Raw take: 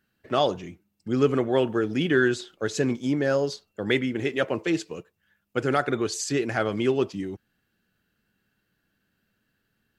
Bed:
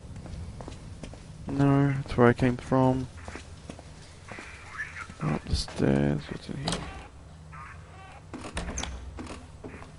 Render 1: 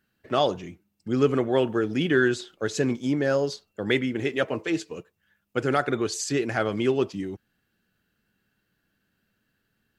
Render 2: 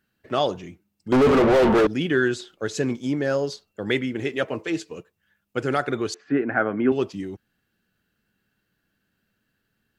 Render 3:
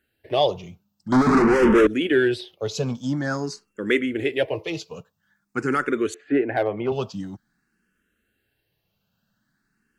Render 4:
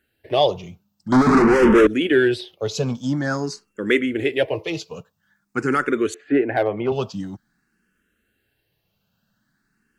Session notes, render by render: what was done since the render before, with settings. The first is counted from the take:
4.44–4.97 s: comb of notches 180 Hz
1.12–1.87 s: overdrive pedal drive 40 dB, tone 1.2 kHz, clips at -9.5 dBFS; 6.14–6.92 s: cabinet simulation 140–2100 Hz, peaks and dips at 260 Hz +9 dB, 730 Hz +4 dB, 1.5 kHz +8 dB
in parallel at -5 dB: overload inside the chain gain 14.5 dB; on the sum: barber-pole phaser +0.48 Hz
trim +2.5 dB

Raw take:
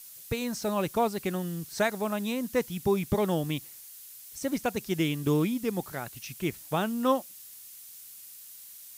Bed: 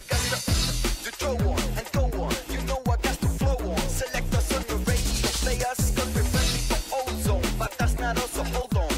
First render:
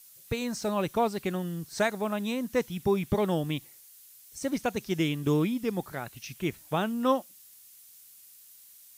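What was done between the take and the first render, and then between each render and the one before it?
noise print and reduce 6 dB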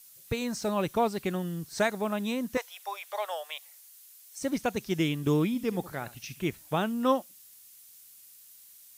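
2.57–4.39 s: steep high-pass 570 Hz 48 dB/octave; 5.47–6.48 s: flutter echo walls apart 11.8 m, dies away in 0.25 s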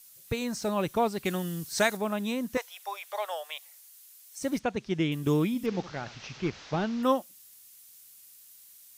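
1.25–1.97 s: treble shelf 2 kHz +7.5 dB; 4.59–5.12 s: distance through air 120 m; 5.66–7.03 s: one-bit delta coder 32 kbps, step -41 dBFS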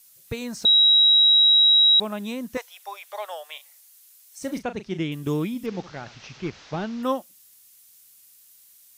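0.65–2.00 s: bleep 3.85 kHz -12.5 dBFS; 3.50–5.03 s: doubling 37 ms -10.5 dB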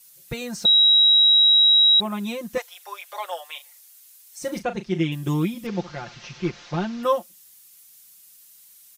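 comb 5.7 ms, depth 93%; dynamic bell 4.3 kHz, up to -5 dB, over -23 dBFS, Q 1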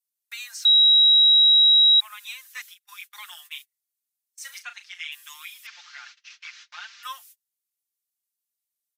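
gate -39 dBFS, range -35 dB; inverse Chebyshev high-pass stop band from 430 Hz, stop band 60 dB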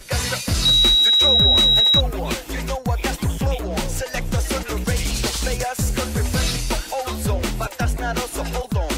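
add bed +2.5 dB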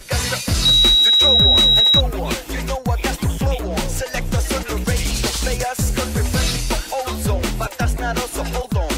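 trim +2 dB

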